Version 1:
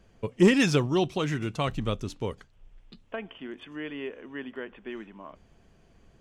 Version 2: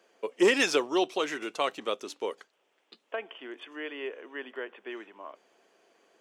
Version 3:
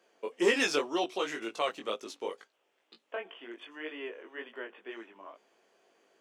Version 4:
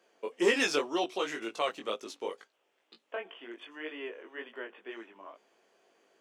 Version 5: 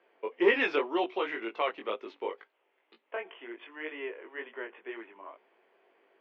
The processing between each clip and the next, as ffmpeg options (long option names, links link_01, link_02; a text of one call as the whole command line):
ffmpeg -i in.wav -af "highpass=frequency=360:width=0.5412,highpass=frequency=360:width=1.3066,volume=1.5dB" out.wav
ffmpeg -i in.wav -af "flanger=delay=17.5:depth=3.8:speed=2" out.wav
ffmpeg -i in.wav -af anull out.wav
ffmpeg -i in.wav -af "highpass=260,equalizer=frequency=380:width_type=q:width=4:gain=4,equalizer=frequency=940:width_type=q:width=4:gain=4,equalizer=frequency=2100:width_type=q:width=4:gain=5,lowpass=frequency=3000:width=0.5412,lowpass=frequency=3000:width=1.3066" out.wav